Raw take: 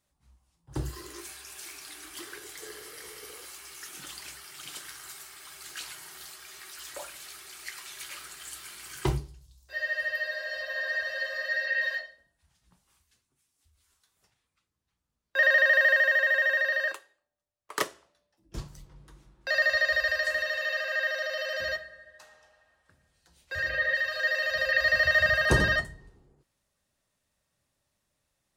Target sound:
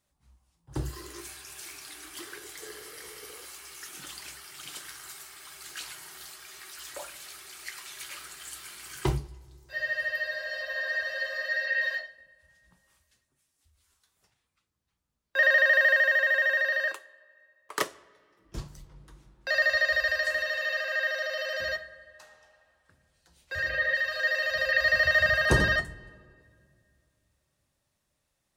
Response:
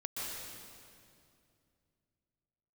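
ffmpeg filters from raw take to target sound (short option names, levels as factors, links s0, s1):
-filter_complex "[0:a]asplit=2[s0][s1];[1:a]atrim=start_sample=2205,lowpass=3300[s2];[s1][s2]afir=irnorm=-1:irlink=0,volume=0.0531[s3];[s0][s3]amix=inputs=2:normalize=0"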